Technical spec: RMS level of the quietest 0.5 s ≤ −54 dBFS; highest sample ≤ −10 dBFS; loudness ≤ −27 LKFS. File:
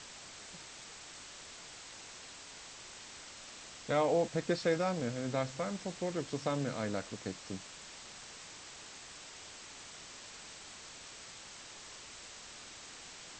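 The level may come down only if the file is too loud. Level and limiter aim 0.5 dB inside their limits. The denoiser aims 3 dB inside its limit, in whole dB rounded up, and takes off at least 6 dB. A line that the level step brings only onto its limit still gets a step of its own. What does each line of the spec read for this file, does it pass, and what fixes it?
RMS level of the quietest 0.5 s −51 dBFS: out of spec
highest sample −17.5 dBFS: in spec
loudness −40.0 LKFS: in spec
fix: broadband denoise 6 dB, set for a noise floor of −51 dBFS

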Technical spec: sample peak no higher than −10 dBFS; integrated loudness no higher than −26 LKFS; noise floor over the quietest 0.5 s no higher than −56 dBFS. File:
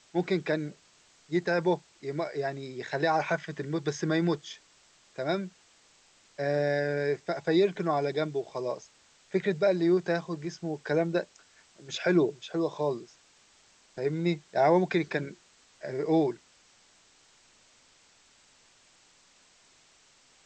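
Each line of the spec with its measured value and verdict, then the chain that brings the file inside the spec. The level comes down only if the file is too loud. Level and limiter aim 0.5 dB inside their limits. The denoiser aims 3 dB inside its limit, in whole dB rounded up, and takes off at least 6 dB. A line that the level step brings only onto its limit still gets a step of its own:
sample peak −12.0 dBFS: in spec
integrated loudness −29.5 LKFS: in spec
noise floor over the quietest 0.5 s −62 dBFS: in spec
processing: no processing needed

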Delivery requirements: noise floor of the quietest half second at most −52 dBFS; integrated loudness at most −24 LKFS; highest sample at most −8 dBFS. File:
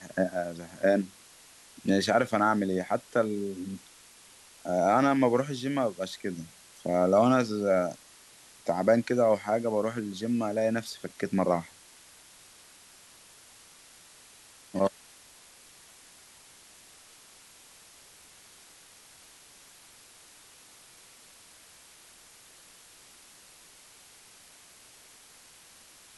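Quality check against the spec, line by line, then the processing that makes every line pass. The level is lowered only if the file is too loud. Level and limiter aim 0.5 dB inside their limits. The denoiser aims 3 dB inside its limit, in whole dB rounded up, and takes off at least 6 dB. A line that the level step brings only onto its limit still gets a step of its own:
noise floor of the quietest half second −55 dBFS: in spec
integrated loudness −28.0 LKFS: in spec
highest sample −10.5 dBFS: in spec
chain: no processing needed

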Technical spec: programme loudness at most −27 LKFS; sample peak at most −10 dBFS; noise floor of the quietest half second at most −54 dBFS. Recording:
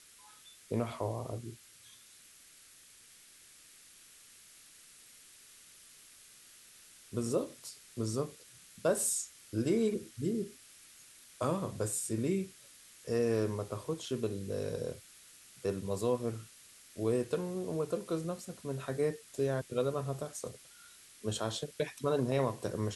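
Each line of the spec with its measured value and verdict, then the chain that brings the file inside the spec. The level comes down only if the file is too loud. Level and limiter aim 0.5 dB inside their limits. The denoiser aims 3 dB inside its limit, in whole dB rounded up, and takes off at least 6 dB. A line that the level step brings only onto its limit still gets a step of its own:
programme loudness −35.5 LKFS: in spec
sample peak −18.0 dBFS: in spec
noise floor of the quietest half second −58 dBFS: in spec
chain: no processing needed

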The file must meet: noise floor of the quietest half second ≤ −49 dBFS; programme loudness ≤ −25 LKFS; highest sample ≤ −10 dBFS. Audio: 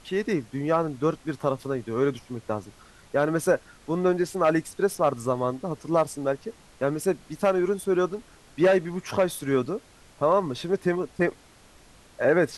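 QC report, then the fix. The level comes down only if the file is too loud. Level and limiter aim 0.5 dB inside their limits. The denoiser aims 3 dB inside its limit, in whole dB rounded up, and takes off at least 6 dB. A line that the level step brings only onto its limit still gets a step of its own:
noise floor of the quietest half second −53 dBFS: in spec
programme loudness −26.0 LKFS: in spec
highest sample −9.0 dBFS: out of spec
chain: brickwall limiter −10.5 dBFS

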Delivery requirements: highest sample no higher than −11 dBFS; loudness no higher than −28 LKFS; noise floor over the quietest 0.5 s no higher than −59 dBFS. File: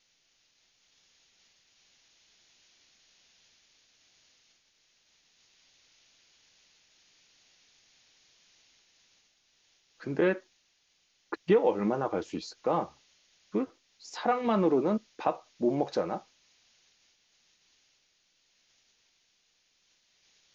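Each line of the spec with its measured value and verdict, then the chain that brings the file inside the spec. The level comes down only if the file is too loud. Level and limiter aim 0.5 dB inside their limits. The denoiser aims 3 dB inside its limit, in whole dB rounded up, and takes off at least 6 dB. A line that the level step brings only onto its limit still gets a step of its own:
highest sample −12.5 dBFS: in spec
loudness −30.5 LKFS: in spec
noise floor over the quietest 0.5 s −72 dBFS: in spec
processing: no processing needed

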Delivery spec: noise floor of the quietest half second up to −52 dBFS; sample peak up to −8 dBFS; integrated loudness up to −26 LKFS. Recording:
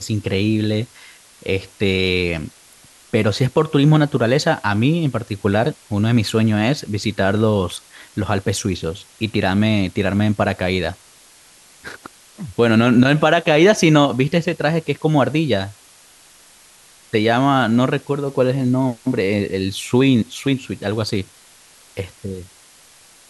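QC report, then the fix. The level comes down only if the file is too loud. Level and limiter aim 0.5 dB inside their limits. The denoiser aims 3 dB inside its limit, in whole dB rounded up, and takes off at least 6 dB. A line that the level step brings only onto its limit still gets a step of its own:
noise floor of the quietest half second −48 dBFS: out of spec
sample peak −3.0 dBFS: out of spec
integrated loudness −18.0 LKFS: out of spec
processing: level −8.5 dB

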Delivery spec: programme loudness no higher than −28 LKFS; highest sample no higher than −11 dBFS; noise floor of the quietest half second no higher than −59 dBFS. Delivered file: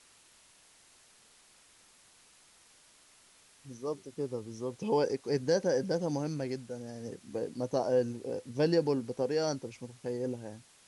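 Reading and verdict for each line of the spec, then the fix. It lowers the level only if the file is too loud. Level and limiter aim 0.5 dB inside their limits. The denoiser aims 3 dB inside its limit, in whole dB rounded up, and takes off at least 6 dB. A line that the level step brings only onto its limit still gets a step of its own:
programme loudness −33.5 LKFS: in spec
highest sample −15.5 dBFS: in spec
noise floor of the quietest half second −62 dBFS: in spec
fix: no processing needed

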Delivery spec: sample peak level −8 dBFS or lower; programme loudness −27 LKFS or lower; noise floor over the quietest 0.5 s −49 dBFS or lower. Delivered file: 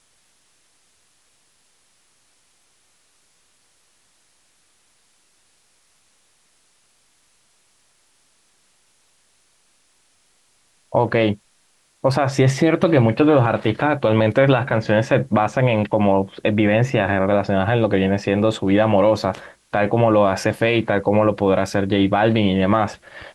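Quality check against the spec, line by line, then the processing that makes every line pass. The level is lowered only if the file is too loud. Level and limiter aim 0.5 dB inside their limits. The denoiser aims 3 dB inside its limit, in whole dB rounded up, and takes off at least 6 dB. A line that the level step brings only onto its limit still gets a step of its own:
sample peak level −5.0 dBFS: out of spec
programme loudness −18.0 LKFS: out of spec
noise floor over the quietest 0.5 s −61 dBFS: in spec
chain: level −9.5 dB

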